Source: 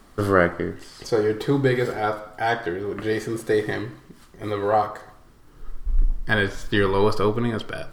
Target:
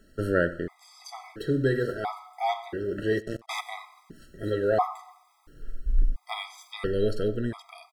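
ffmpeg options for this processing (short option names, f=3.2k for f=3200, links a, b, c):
-filter_complex "[0:a]dynaudnorm=f=210:g=17:m=5.5dB,asplit=3[a][b][c];[a]afade=t=out:st=3.19:d=0.02[d];[b]acrusher=bits=2:mix=0:aa=0.5,afade=t=in:st=3.19:d=0.02,afade=t=out:st=3.6:d=0.02[e];[c]afade=t=in:st=3.6:d=0.02[f];[d][e][f]amix=inputs=3:normalize=0,asplit=2[g][h];[h]adelay=93.29,volume=-20dB,highshelf=f=4k:g=-2.1[i];[g][i]amix=inputs=2:normalize=0,afftfilt=real='re*gt(sin(2*PI*0.73*pts/sr)*(1-2*mod(floor(b*sr/1024/650),2)),0)':imag='im*gt(sin(2*PI*0.73*pts/sr)*(1-2*mod(floor(b*sr/1024/650),2)),0)':win_size=1024:overlap=0.75,volume=-5.5dB"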